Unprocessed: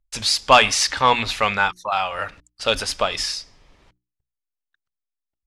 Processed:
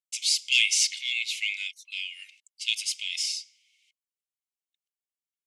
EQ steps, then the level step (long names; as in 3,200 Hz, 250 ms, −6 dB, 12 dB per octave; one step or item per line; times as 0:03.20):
Chebyshev high-pass with heavy ripple 2,100 Hz, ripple 6 dB
0.0 dB